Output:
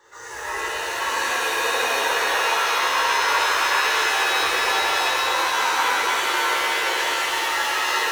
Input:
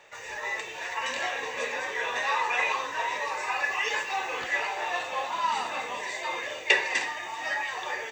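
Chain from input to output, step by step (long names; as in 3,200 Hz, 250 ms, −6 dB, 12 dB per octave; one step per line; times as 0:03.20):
compressor whose output falls as the input rises −30 dBFS
phaser with its sweep stopped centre 670 Hz, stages 6
reverb with rising layers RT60 3.7 s, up +7 semitones, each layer −2 dB, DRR −10.5 dB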